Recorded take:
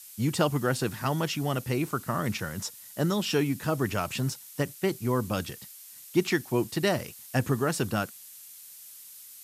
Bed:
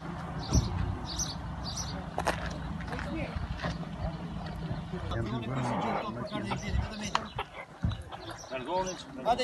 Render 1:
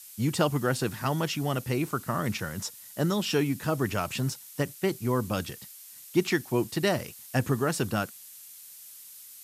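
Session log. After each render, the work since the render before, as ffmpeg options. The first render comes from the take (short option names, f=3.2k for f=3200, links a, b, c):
-af anull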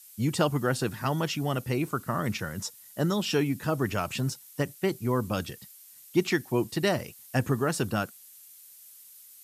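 -af "afftdn=nr=6:nf=-48"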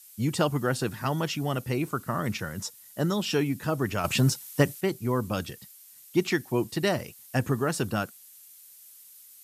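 -filter_complex "[0:a]asettb=1/sr,asplit=3[a][b][c];[a]atrim=end=4.044[d];[b]atrim=start=4.04:end=4.81,asetpts=PTS-STARTPTS,afade=t=in:d=0.004:c=qsin,afade=t=out:st=0.766:d=0.004:c=qsin,acontrast=87[e];[c]atrim=start=4.806[f];[d][e]acrossfade=d=0.004:c1=hsin:c2=qsin[g];[g][f]acrossfade=d=0.004:c1=qsin:c2=hsin"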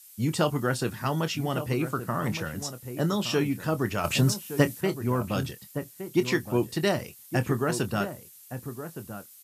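-filter_complex "[0:a]asplit=2[a][b];[b]adelay=25,volume=-12dB[c];[a][c]amix=inputs=2:normalize=0,asplit=2[d][e];[e]adelay=1166,volume=-10dB,highshelf=f=4k:g=-26.2[f];[d][f]amix=inputs=2:normalize=0"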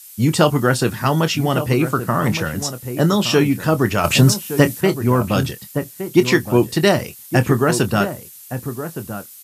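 -af "volume=10.5dB,alimiter=limit=-1dB:level=0:latency=1"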